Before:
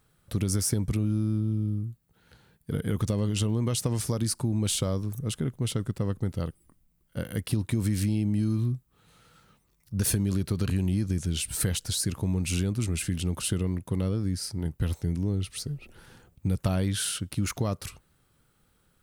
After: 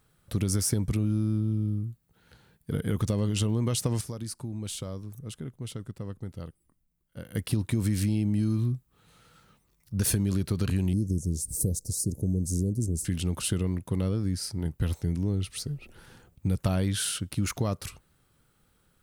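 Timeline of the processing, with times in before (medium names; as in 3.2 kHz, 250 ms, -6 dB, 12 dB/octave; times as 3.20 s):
4.01–7.35 s: gain -8.5 dB
10.93–13.05 s: inverse Chebyshev band-stop 1.2–2.8 kHz, stop band 60 dB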